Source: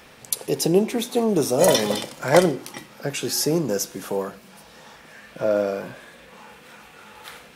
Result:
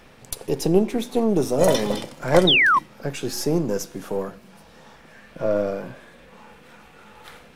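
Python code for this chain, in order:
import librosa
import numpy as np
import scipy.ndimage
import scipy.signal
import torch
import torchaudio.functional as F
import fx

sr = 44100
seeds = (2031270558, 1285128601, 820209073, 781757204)

y = np.where(x < 0.0, 10.0 ** (-3.0 / 20.0) * x, x)
y = fx.tilt_eq(y, sr, slope=-1.5)
y = fx.spec_paint(y, sr, seeds[0], shape='fall', start_s=2.47, length_s=0.32, low_hz=970.0, high_hz=3900.0, level_db=-15.0)
y = y * 10.0 ** (-1.0 / 20.0)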